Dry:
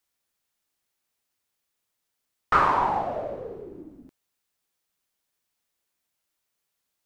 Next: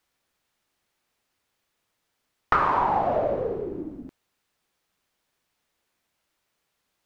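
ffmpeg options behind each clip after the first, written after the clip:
-af "highshelf=f=5.4k:g=-11.5,acompressor=threshold=-28dB:ratio=6,volume=9dB"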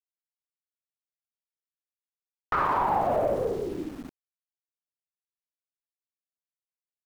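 -af "aeval=exprs='val(0)*gte(abs(val(0)),0.0075)':c=same,alimiter=limit=-16.5dB:level=0:latency=1:release=36"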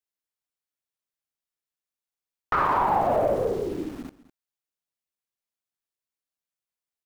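-af "aecho=1:1:205:0.126,volume=2.5dB"

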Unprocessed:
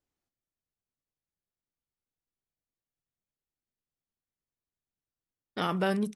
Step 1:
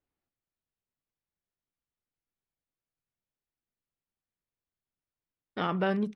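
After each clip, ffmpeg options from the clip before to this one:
-af "lowpass=3.1k"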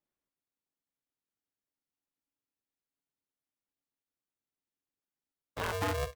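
-af "aeval=exprs='val(0)*sgn(sin(2*PI*280*n/s))':c=same,volume=-4.5dB"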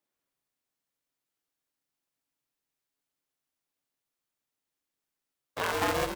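-filter_complex "[0:a]highpass=f=290:p=1,asplit=7[a][b][c][d][e][f][g];[b]adelay=134,afreqshift=-140,volume=-5.5dB[h];[c]adelay=268,afreqshift=-280,volume=-11.7dB[i];[d]adelay=402,afreqshift=-420,volume=-17.9dB[j];[e]adelay=536,afreqshift=-560,volume=-24.1dB[k];[f]adelay=670,afreqshift=-700,volume=-30.3dB[l];[g]adelay=804,afreqshift=-840,volume=-36.5dB[m];[a][h][i][j][k][l][m]amix=inputs=7:normalize=0,volume=5dB"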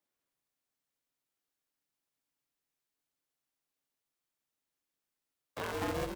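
-filter_complex "[0:a]acrossover=split=450[a][b];[b]acompressor=threshold=-48dB:ratio=1.5[c];[a][c]amix=inputs=2:normalize=0,volume=-2dB"

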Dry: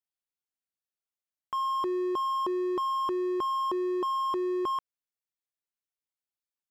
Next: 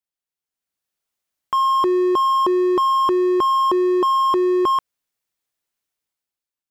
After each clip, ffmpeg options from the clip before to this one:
-af "dynaudnorm=f=130:g=11:m=10.5dB,volume=1.5dB"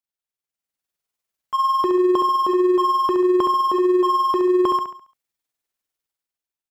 -filter_complex "[0:a]tremolo=f=20:d=0.71,asplit=2[a][b];[b]aecho=0:1:69|138|207|276|345:0.501|0.195|0.0762|0.0297|0.0116[c];[a][c]amix=inputs=2:normalize=0"

